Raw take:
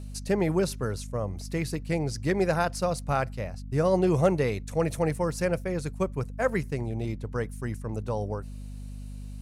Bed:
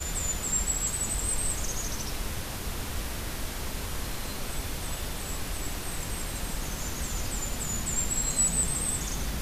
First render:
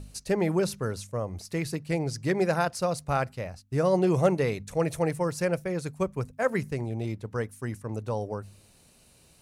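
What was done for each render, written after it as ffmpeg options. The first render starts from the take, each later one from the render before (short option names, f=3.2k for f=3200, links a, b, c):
-af "bandreject=f=50:t=h:w=4,bandreject=f=100:t=h:w=4,bandreject=f=150:t=h:w=4,bandreject=f=200:t=h:w=4,bandreject=f=250:t=h:w=4"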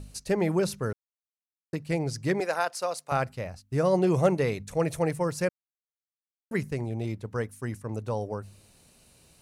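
-filter_complex "[0:a]asettb=1/sr,asplit=3[a][b][c];[a]atrim=end=2.404[d];[b]atrim=start=2.4:end=3.12,asetpts=PTS-STARTPTS,afade=t=in:d=0.004:c=qsin,afade=t=out:st=0.716:d=0.004:c=qsin,highpass=520[e];[c]atrim=start=3.116[f];[d][e]acrossfade=d=0.004:c1=hsin:c2=qsin[g];[g][f]acrossfade=d=0.004:c1=qsin:c2=hsin,asplit=5[h][i][j][k][l];[h]atrim=end=0.93,asetpts=PTS-STARTPTS,afade=t=out:st=0.926:d=0.004:c=hsin[m];[i]atrim=start=0.93:end=1.73,asetpts=PTS-STARTPTS,volume=0[n];[j]atrim=start=1.73:end=5.49,asetpts=PTS-STARTPTS,afade=t=in:d=0.004:c=hsin,afade=t=out:st=3.756:d=0.004:c=hsin[o];[k]atrim=start=5.49:end=6.51,asetpts=PTS-STARTPTS,volume=0[p];[l]atrim=start=6.51,asetpts=PTS-STARTPTS,afade=t=in:d=0.004:c=hsin[q];[m][n][o][p][q]concat=n=5:v=0:a=1"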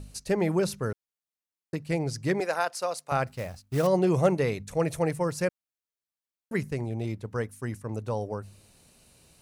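-filter_complex "[0:a]asettb=1/sr,asplit=3[a][b][c];[a]atrim=end=3.274[d];[b]atrim=start=3.27:end=3.87,asetpts=PTS-STARTPTS,afade=t=in:d=0.004:c=qsin,afade=t=out:st=0.596:d=0.004:c=qsin,acrusher=bits=4:mode=log:mix=0:aa=0.000001[e];[c]atrim=start=3.866[f];[d][e]acrossfade=d=0.004:c1=hsin:c2=qsin[g];[g][f]acrossfade=d=0.004:c1=qsin:c2=hsin"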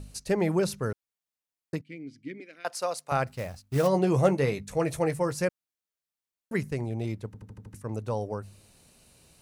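-filter_complex "[0:a]asettb=1/sr,asplit=3[a][b][c];[a]atrim=end=1.814[d];[b]atrim=start=1.81:end=2.65,asetpts=PTS-STARTPTS,afade=t=in:d=0.004:c=qsin,afade=t=out:st=0.836:d=0.004:c=qsin,asplit=3[e][f][g];[e]bandpass=f=270:t=q:w=8,volume=0dB[h];[f]bandpass=f=2.29k:t=q:w=8,volume=-6dB[i];[g]bandpass=f=3.01k:t=q:w=8,volume=-9dB[j];[h][i][j]amix=inputs=3:normalize=0[k];[c]atrim=start=2.646[l];[d][k]acrossfade=d=0.004:c1=hsin:c2=qsin[m];[m][l]acrossfade=d=0.004:c1=qsin:c2=hsin,asettb=1/sr,asplit=3[n][o][p];[n]atrim=end=3.744[q];[o]atrim=start=3.74:end=5.42,asetpts=PTS-STARTPTS,afade=t=in:d=0.004:c=qsin,afade=t=out:st=1.676:d=0.004:c=qsin,asplit=2[r][s];[s]adelay=15,volume=-9dB[t];[r][t]amix=inputs=2:normalize=0,atrim=end_sample=74088[u];[p]atrim=start=5.416[v];[q][u]acrossfade=d=0.004:c1=hsin:c2=qsin[w];[w][v]acrossfade=d=0.004:c1=qsin:c2=hsin,asplit=7[x][y][z][aa][ab][ac][ad];[x]atrim=end=7.342[ae];[y]atrim=start=7.258:end=7.342[af];[z]atrim=start=7.258:end=7.342[ag];[aa]atrim=start=7.258:end=7.342[ah];[ab]atrim=start=7.258:end=7.342[ai];[ac]atrim=start=7.258:end=7.342[aj];[ad]atrim=start=7.738[ak];[ae][af]acrossfade=d=0.004:c1=hsin:c2=hsin[al];[al][ag]acrossfade=d=0.004:c1=hsin:c2=hsin[am];[am][ah]acrossfade=d=0.004:c1=hsin:c2=hsin[an];[an][ai]acrossfade=d=0.004:c1=hsin:c2=hsin[ao];[ao][aj]acrossfade=d=0.004:c1=hsin:c2=hsin[ap];[ap][ak]acrossfade=d=0.004:c1=hsin:c2=hsin"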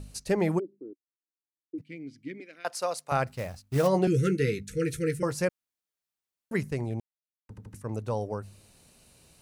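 -filter_complex "[0:a]asplit=3[a][b][c];[a]afade=t=out:st=0.58:d=0.02[d];[b]asuperpass=centerf=320:order=4:qfactor=3.7,afade=t=in:st=0.58:d=0.02,afade=t=out:st=1.78:d=0.02[e];[c]afade=t=in:st=1.78:d=0.02[f];[d][e][f]amix=inputs=3:normalize=0,asettb=1/sr,asplit=3[g][h][i];[g]atrim=end=4.074[j];[h]atrim=start=4.07:end=5.23,asetpts=PTS-STARTPTS,afade=t=in:d=0.004:c=qsin,afade=t=out:st=1.156:d=0.004:c=qsin,asuperstop=centerf=810:order=20:qfactor=0.98[k];[i]atrim=start=5.226[l];[j][k]acrossfade=d=0.004:c1=hsin:c2=qsin[m];[m][l]acrossfade=d=0.004:c1=qsin:c2=hsin,asplit=3[n][o][p];[n]atrim=end=7,asetpts=PTS-STARTPTS,afade=t=out:st=6.996:d=0.004:c=hsin[q];[o]atrim=start=7:end=7.49,asetpts=PTS-STARTPTS,volume=0[r];[p]atrim=start=7.49,asetpts=PTS-STARTPTS,afade=t=in:d=0.004:c=hsin[s];[q][r][s]concat=n=3:v=0:a=1"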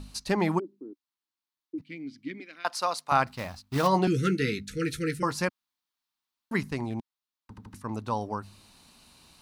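-af "equalizer=f=125:t=o:w=1:g=-5,equalizer=f=250:t=o:w=1:g=6,equalizer=f=500:t=o:w=1:g=-8,equalizer=f=1k:t=o:w=1:g=10,equalizer=f=4k:t=o:w=1:g=8,equalizer=f=8k:t=o:w=1:g=-3"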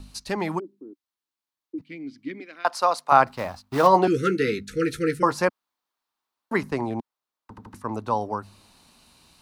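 -filter_complex "[0:a]acrossover=split=330|1400[a][b][c];[a]alimiter=level_in=3.5dB:limit=-24dB:level=0:latency=1,volume=-3.5dB[d];[b]dynaudnorm=f=440:g=9:m=11dB[e];[d][e][c]amix=inputs=3:normalize=0"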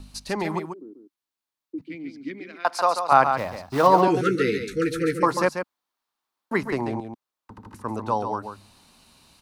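-af "aecho=1:1:140:0.422"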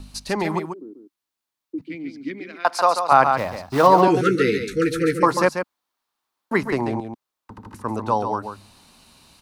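-af "volume=3.5dB,alimiter=limit=-1dB:level=0:latency=1"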